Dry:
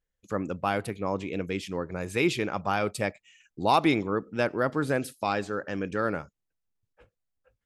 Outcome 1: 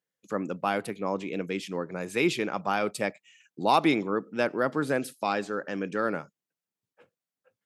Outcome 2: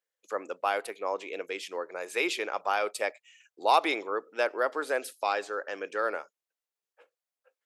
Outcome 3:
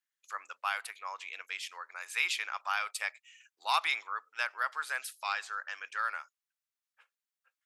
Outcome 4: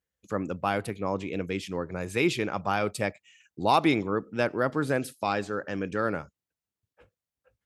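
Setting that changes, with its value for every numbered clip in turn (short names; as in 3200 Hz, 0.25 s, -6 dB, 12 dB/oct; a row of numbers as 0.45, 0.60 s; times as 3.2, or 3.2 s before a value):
HPF, cutoff: 150, 430, 1100, 56 Hz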